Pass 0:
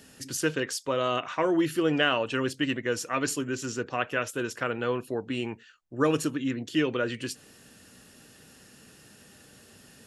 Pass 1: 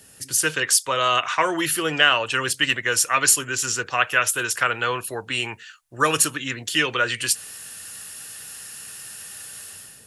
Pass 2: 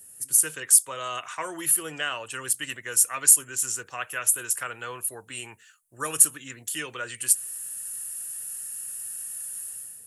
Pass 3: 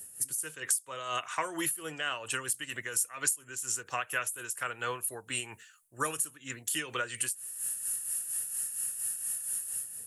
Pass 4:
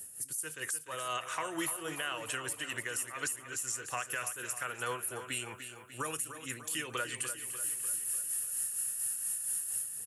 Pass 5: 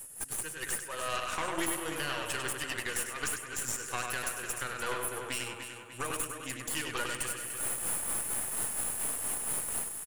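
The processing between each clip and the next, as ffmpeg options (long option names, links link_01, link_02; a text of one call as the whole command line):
ffmpeg -i in.wav -filter_complex "[0:a]equalizer=frequency=100:width_type=o:width=0.67:gain=4,equalizer=frequency=250:width_type=o:width=0.67:gain=-7,equalizer=frequency=10000:width_type=o:width=0.67:gain=11,acrossover=split=510|840[link_01][link_02][link_03];[link_03]dynaudnorm=framelen=110:gausssize=7:maxgain=12.5dB[link_04];[link_01][link_02][link_04]amix=inputs=3:normalize=0" out.wav
ffmpeg -i in.wav -af "highshelf=frequency=6700:width_type=q:width=1.5:gain=13.5,volume=-12dB" out.wav
ffmpeg -i in.wav -af "acompressor=threshold=-31dB:ratio=6,tremolo=f=4.3:d=0.58,volume=4dB" out.wav
ffmpeg -i in.wav -filter_complex "[0:a]alimiter=level_in=0.5dB:limit=-24dB:level=0:latency=1:release=103,volume=-0.5dB,asplit=2[link_01][link_02];[link_02]aecho=0:1:297|594|891|1188|1485|1782:0.316|0.174|0.0957|0.0526|0.0289|0.0159[link_03];[link_01][link_03]amix=inputs=2:normalize=0" out.wav
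ffmpeg -i in.wav -filter_complex "[0:a]asplit=2[link_01][link_02];[link_02]adelay=99,lowpass=frequency=5000:poles=1,volume=-3.5dB,asplit=2[link_03][link_04];[link_04]adelay=99,lowpass=frequency=5000:poles=1,volume=0.4,asplit=2[link_05][link_06];[link_06]adelay=99,lowpass=frequency=5000:poles=1,volume=0.4,asplit=2[link_07][link_08];[link_08]adelay=99,lowpass=frequency=5000:poles=1,volume=0.4,asplit=2[link_09][link_10];[link_10]adelay=99,lowpass=frequency=5000:poles=1,volume=0.4[link_11];[link_01][link_03][link_05][link_07][link_09][link_11]amix=inputs=6:normalize=0,aeval=exprs='0.0841*(cos(1*acos(clip(val(0)/0.0841,-1,1)))-cos(1*PI/2))+0.0211*(cos(4*acos(clip(val(0)/0.0841,-1,1)))-cos(4*PI/2))':channel_layout=same" out.wav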